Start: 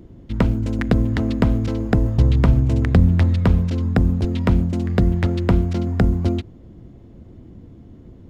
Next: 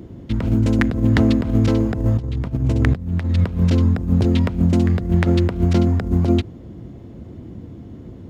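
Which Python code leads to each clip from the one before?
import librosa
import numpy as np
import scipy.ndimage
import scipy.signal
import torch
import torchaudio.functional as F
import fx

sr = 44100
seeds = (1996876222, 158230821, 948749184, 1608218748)

y = fx.over_compress(x, sr, threshold_db=-19.0, ratio=-0.5)
y = scipy.signal.sosfilt(scipy.signal.butter(2, 64.0, 'highpass', fs=sr, output='sos'), y)
y = F.gain(torch.from_numpy(y), 4.0).numpy()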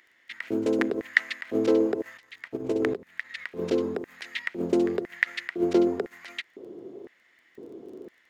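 y = fx.filter_lfo_highpass(x, sr, shape='square', hz=0.99, low_hz=400.0, high_hz=1900.0, q=6.6)
y = fx.dmg_crackle(y, sr, seeds[0], per_s=17.0, level_db=-41.0)
y = F.gain(torch.from_numpy(y), -7.0).numpy()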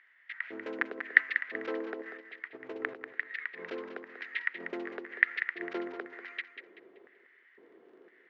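y = fx.bandpass_q(x, sr, hz=1700.0, q=1.8)
y = fx.air_absorb(y, sr, metres=140.0)
y = fx.echo_feedback(y, sr, ms=191, feedback_pct=32, wet_db=-9.5)
y = F.gain(torch.from_numpy(y), 2.0).numpy()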